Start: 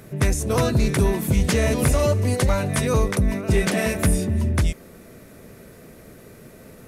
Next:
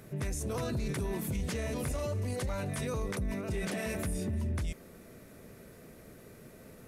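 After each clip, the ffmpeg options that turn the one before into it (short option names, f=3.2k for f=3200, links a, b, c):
-af "alimiter=limit=-19.5dB:level=0:latency=1:release=28,volume=-7.5dB"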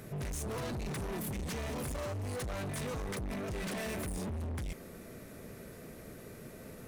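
-af "asoftclip=type=hard:threshold=-39.5dB,volume=3.5dB"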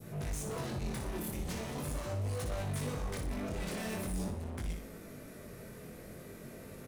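-af "aecho=1:1:60|120|180|240|300:0.473|0.194|0.0795|0.0326|0.0134,flanger=delay=18.5:depth=5.4:speed=0.42,adynamicequalizer=threshold=0.002:dfrequency=1900:dqfactor=0.95:tfrequency=1900:tqfactor=0.95:attack=5:release=100:ratio=0.375:range=1.5:mode=cutabove:tftype=bell,volume=2dB"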